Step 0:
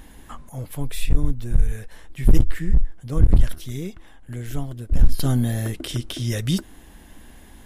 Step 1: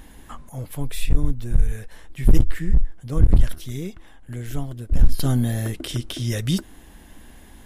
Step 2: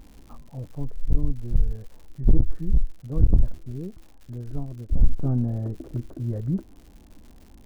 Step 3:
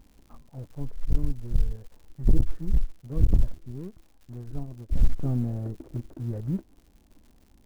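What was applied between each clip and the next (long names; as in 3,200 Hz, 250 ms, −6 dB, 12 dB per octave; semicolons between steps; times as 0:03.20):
no processing that can be heard
Gaussian smoothing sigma 9.2 samples; surface crackle 170 per second −39 dBFS; level −3 dB
mu-law and A-law mismatch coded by A; level −2.5 dB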